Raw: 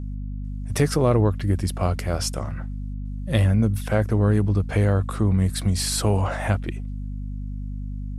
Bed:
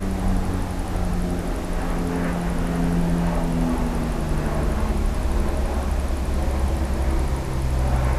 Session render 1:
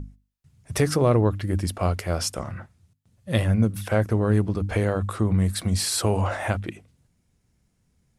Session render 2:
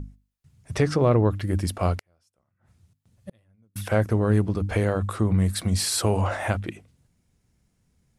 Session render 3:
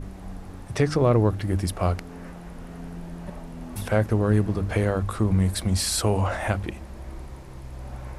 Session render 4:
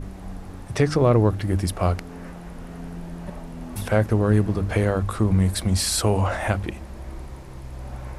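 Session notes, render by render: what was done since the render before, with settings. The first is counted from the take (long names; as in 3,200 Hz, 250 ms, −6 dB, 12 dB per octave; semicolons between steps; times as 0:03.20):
mains-hum notches 50/100/150/200/250/300 Hz
0:00.75–0:01.30: high-frequency loss of the air 87 metres; 0:01.99–0:03.76: gate with flip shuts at −25 dBFS, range −41 dB
mix in bed −16 dB
level +2 dB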